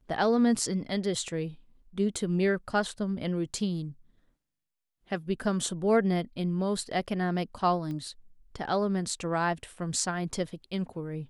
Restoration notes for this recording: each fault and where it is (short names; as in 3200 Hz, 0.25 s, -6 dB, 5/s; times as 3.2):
7.91 pop -27 dBFS